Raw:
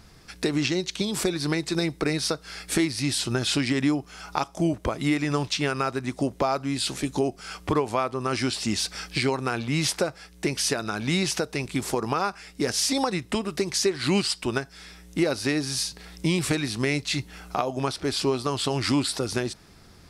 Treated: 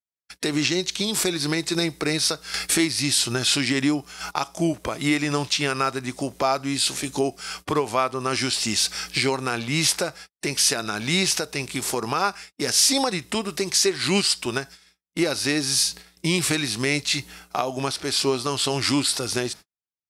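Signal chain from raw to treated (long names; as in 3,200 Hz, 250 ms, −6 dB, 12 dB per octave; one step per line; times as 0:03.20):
noise gate −41 dBFS, range −57 dB
harmonic and percussive parts rebalanced harmonic +5 dB
0:02.54–0:04.31: upward compression, threshold −23 dBFS
spectral tilt +2 dB per octave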